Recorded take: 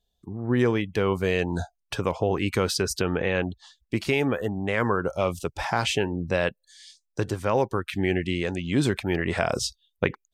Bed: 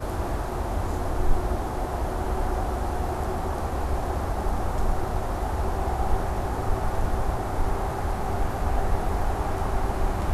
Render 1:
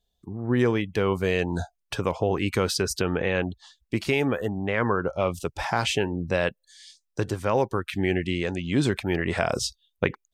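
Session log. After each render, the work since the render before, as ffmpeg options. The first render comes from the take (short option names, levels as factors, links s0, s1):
-filter_complex "[0:a]asettb=1/sr,asplit=3[s0][s1][s2];[s0]atrim=end=4.624[s3];[s1]atrim=start=4.62:end=5.34,asetpts=PTS-STARTPTS,afade=t=in:d=0.004:c=qsin,afade=t=out:st=0.716:d=0.004:c=qsin,lowpass=3700[s4];[s2]atrim=start=5.336[s5];[s3][s4]acrossfade=d=0.004:c1=hsin:c2=qsin[s6];[s6][s5]acrossfade=d=0.004:c1=qsin:c2=hsin,asettb=1/sr,asplit=3[s7][s8][s9];[s7]atrim=end=8.304[s10];[s8]atrim=start=8.3:end=8.92,asetpts=PTS-STARTPTS,afade=t=in:d=0.004:c=qsin,afade=t=out:st=0.616:d=0.004:c=qsin,lowpass=9800[s11];[s9]atrim=start=8.916[s12];[s10][s11]acrossfade=d=0.004:c1=hsin:c2=qsin[s13];[s13][s12]acrossfade=d=0.004:c1=qsin:c2=hsin"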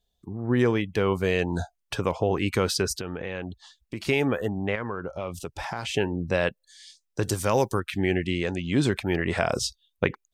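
-filter_complex "[0:a]asettb=1/sr,asplit=3[s0][s1][s2];[s0]atrim=end=2.954[s3];[s1]atrim=start=2.95:end=4.07,asetpts=PTS-STARTPTS,afade=t=in:d=0.004:c=qsin,afade=t=out:st=1.116:d=0.004:c=qsin,acompressor=threshold=0.0282:ratio=3:attack=3.2:release=140:knee=1:detection=peak[s4];[s2]atrim=start=4.066[s5];[s3][s4]acrossfade=d=0.004:c1=hsin:c2=qsin[s6];[s6][s5]acrossfade=d=0.004:c1=qsin:c2=hsin,asettb=1/sr,asplit=3[s7][s8][s9];[s7]atrim=end=4.754[s10];[s8]atrim=start=4.75:end=5.94,asetpts=PTS-STARTPTS,afade=t=in:d=0.004:c=qsin,afade=t=out:st=1.186:d=0.004:c=qsin,acompressor=threshold=0.0282:ratio=2.5:attack=3.2:release=140:knee=1:detection=peak[s11];[s9]atrim=start=5.936[s12];[s10][s11]acrossfade=d=0.004:c1=hsin:c2=qsin[s13];[s13][s12]acrossfade=d=0.004:c1=qsin:c2=hsin,asettb=1/sr,asplit=3[s14][s15][s16];[s14]atrim=end=7.234[s17];[s15]atrim=start=7.23:end=7.8,asetpts=PTS-STARTPTS,afade=t=in:d=0.004:c=qsin,afade=t=out:st=0.566:d=0.004:c=qsin,bass=f=250:g=2,treble=f=4000:g=15[s18];[s16]atrim=start=7.796[s19];[s17][s18]acrossfade=d=0.004:c1=hsin:c2=qsin[s20];[s20][s19]acrossfade=d=0.004:c1=qsin:c2=hsin"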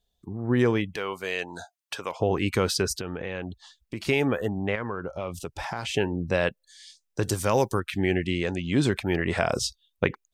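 -filter_complex "[0:a]asettb=1/sr,asplit=3[s0][s1][s2];[s0]atrim=end=0.964[s3];[s1]atrim=start=0.96:end=2.2,asetpts=PTS-STARTPTS,afade=t=in:d=0.004:c=qsin,afade=t=out:st=1.236:d=0.004:c=qsin,highpass=f=1100:p=1[s4];[s2]atrim=start=2.196[s5];[s3][s4]acrossfade=d=0.004:c1=hsin:c2=qsin[s6];[s6][s5]acrossfade=d=0.004:c1=qsin:c2=hsin"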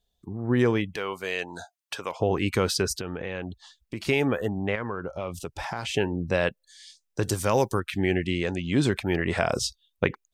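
-af anull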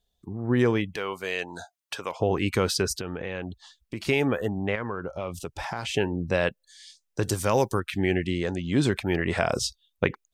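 -filter_complex "[0:a]asettb=1/sr,asplit=3[s0][s1][s2];[s0]atrim=end=8.284[s3];[s1]atrim=start=8.28:end=8.75,asetpts=PTS-STARTPTS,afade=t=in:d=0.004:c=qsin,afade=t=out:st=0.466:d=0.004:c=qsin,equalizer=f=2500:w=2.7:g=-6.5[s4];[s2]atrim=start=8.746[s5];[s3][s4]acrossfade=d=0.004:c1=hsin:c2=qsin[s6];[s6][s5]acrossfade=d=0.004:c1=qsin:c2=hsin"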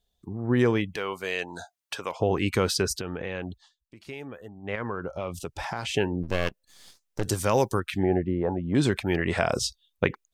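-filter_complex "[0:a]asplit=3[s0][s1][s2];[s0]afade=t=out:st=6.22:d=0.02[s3];[s1]aeval=exprs='max(val(0),0)':c=same,afade=t=in:st=6.22:d=0.02,afade=t=out:st=7.24:d=0.02[s4];[s2]afade=t=in:st=7.24:d=0.02[s5];[s3][s4][s5]amix=inputs=3:normalize=0,asettb=1/sr,asplit=3[s6][s7][s8];[s6]atrim=end=8.034[s9];[s7]atrim=start=8.03:end=8.75,asetpts=PTS-STARTPTS,afade=t=in:d=0.004:c=qsin,afade=t=out:st=0.716:d=0.004:c=qsin,lowpass=f=870:t=q:w=3.3[s10];[s8]atrim=start=8.746[s11];[s9][s10]acrossfade=d=0.004:c1=hsin:c2=qsin[s12];[s12][s11]acrossfade=d=0.004:c1=qsin:c2=hsin,asplit=3[s13][s14][s15];[s13]atrim=end=3.7,asetpts=PTS-STARTPTS,afade=t=out:st=3.51:d=0.19:silence=0.16788[s16];[s14]atrim=start=3.7:end=4.62,asetpts=PTS-STARTPTS,volume=0.168[s17];[s15]atrim=start=4.62,asetpts=PTS-STARTPTS,afade=t=in:d=0.19:silence=0.16788[s18];[s16][s17][s18]concat=n=3:v=0:a=1"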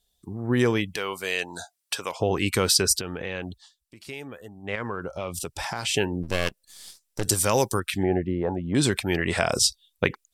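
-af "equalizer=f=9800:t=o:w=2.3:g=12,bandreject=f=6500:w=14"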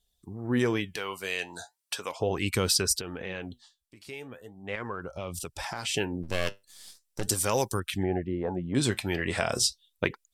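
-af "flanger=delay=0.3:depth=9.8:regen=71:speed=0.38:shape=sinusoidal,aeval=exprs='0.335*(cos(1*acos(clip(val(0)/0.335,-1,1)))-cos(1*PI/2))+0.00841*(cos(2*acos(clip(val(0)/0.335,-1,1)))-cos(2*PI/2))':c=same"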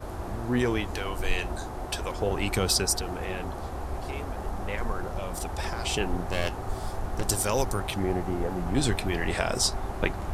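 -filter_complex "[1:a]volume=0.447[s0];[0:a][s0]amix=inputs=2:normalize=0"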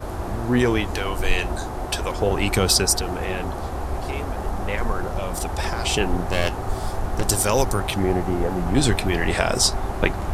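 -af "volume=2.11,alimiter=limit=0.708:level=0:latency=1"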